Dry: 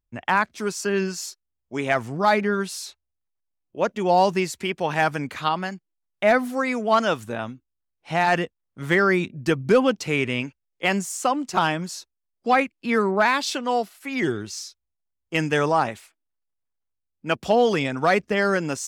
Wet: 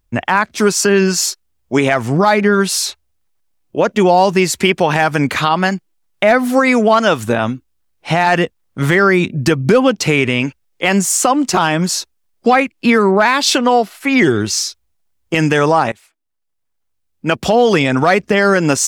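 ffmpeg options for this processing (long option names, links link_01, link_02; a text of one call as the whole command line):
ffmpeg -i in.wav -filter_complex "[0:a]asettb=1/sr,asplit=3[link_01][link_02][link_03];[link_01]atrim=end=13.584[link_04];[link_02]atrim=start=13.58:end=14.21,asetpts=PTS-STARTPTS,afade=type=in:duration=0.004:curve=qsin,afade=type=out:start_time=0.626:duration=0.004:curve=qsin,highshelf=frequency=4700:gain=-7[link_05];[link_03]atrim=start=14.206[link_06];[link_04][link_05]acrossfade=duration=0.004:curve1=hsin:curve2=qsin[link_07];[link_07][link_06]acrossfade=duration=0.004:curve1=qsin:curve2=hsin,asplit=2[link_08][link_09];[link_08]atrim=end=15.92,asetpts=PTS-STARTPTS,afade=type=out:start_time=15.916:duration=0.004:curve=hsin:silence=0.0794328[link_10];[link_09]atrim=start=15.92,asetpts=PTS-STARTPTS,afade=type=in:duration=1.77:silence=0.0794328[link_11];[link_10][link_11]concat=n=2:v=0:a=1,acompressor=threshold=-24dB:ratio=5,alimiter=level_in=17.5dB:limit=-1dB:release=50:level=0:latency=1,volume=-1dB" out.wav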